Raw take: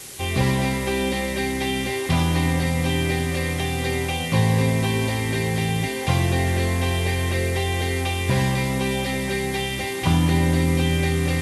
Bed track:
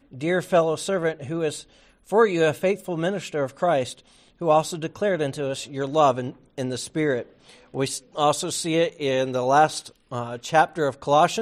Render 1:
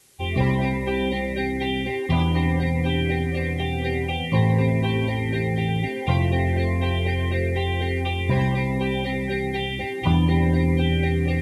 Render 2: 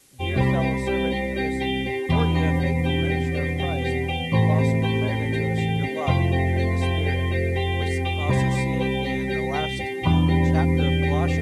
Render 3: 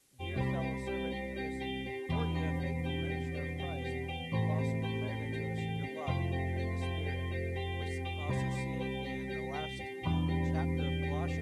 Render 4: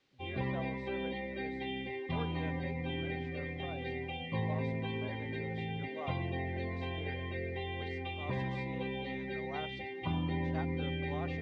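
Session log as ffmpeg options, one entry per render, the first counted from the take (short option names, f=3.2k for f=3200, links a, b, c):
-af "afftdn=nr=18:nf=-27"
-filter_complex "[1:a]volume=-13dB[a];[0:a][a]amix=inputs=2:normalize=0"
-af "volume=-13dB"
-af "lowpass=f=4.2k:w=0.5412,lowpass=f=4.2k:w=1.3066,lowshelf=f=100:g=-8.5"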